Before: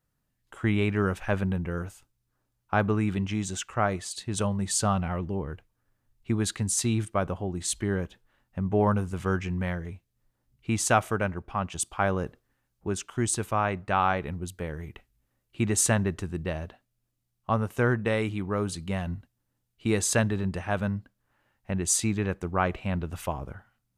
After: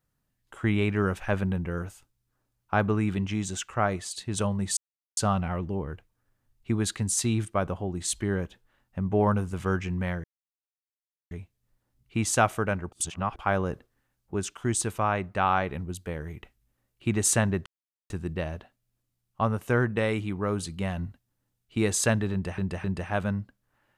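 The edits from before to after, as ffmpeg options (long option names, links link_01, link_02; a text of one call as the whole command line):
ffmpeg -i in.wav -filter_complex "[0:a]asplit=8[link_01][link_02][link_03][link_04][link_05][link_06][link_07][link_08];[link_01]atrim=end=4.77,asetpts=PTS-STARTPTS,afade=type=out:start_time=4.766:duration=0.004:curve=hsin,apad=pad_dur=0.4[link_09];[link_02]atrim=start=4.77:end=9.84,asetpts=PTS-STARTPTS,afade=type=in:duration=0.004:curve=hsin,afade=type=out:start_time=5.066:duration=0.004:curve=hsin,apad=pad_dur=1.07[link_10];[link_03]atrim=start=9.84:end=11.452,asetpts=PTS-STARTPTS,afade=type=in:duration=0.004:curve=hsin[link_11];[link_04]atrim=start=11.448:end=11.922,asetpts=PTS-STARTPTS,areverse[link_12];[link_05]atrim=start=11.918:end=16.19,asetpts=PTS-STARTPTS,afade=type=out:start_time=4.268:duration=0.004:curve=hsin,apad=pad_dur=0.44[link_13];[link_06]atrim=start=16.19:end=20.672,asetpts=PTS-STARTPTS,afade=type=in:duration=0.004:curve=hsin[link_14];[link_07]atrim=start=20.408:end=20.672[link_15];[link_08]atrim=start=20.408[link_16];[link_09][link_10][link_11]concat=n=3:v=0:a=1[link_17];[link_17][link_12]acrossfade=duration=0.004:curve1=hsin:curve2=hsin[link_18];[link_13][link_14]concat=n=2:v=0:a=1[link_19];[link_18][link_19]acrossfade=duration=0.004:curve1=hsin:curve2=hsin[link_20];[link_20][link_15]acrossfade=duration=0.004:curve1=hsin:curve2=hsin[link_21];[link_21][link_16]acrossfade=duration=0.004:curve1=hsin:curve2=hsin" out.wav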